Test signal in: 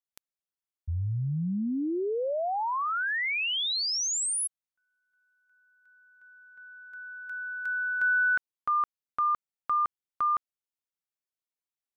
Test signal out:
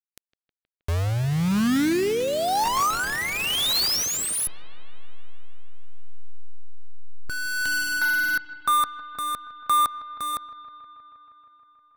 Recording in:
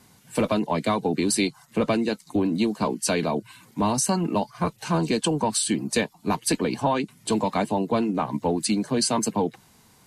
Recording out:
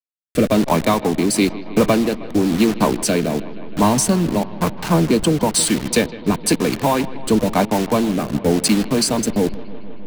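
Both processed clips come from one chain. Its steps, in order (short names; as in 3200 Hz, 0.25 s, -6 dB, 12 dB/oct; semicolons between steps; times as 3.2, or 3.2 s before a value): level-crossing sampler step -28 dBFS; rotary speaker horn 1 Hz; analogue delay 0.158 s, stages 4096, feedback 79%, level -18 dB; gain +9 dB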